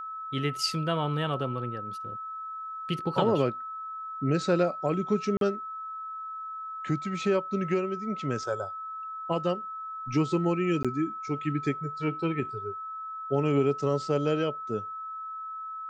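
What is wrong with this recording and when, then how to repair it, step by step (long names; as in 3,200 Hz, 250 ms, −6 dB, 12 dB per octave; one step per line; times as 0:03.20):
whistle 1,300 Hz −35 dBFS
0:05.37–0:05.41: drop-out 42 ms
0:10.83–0:10.85: drop-out 16 ms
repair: notch filter 1,300 Hz, Q 30
repair the gap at 0:05.37, 42 ms
repair the gap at 0:10.83, 16 ms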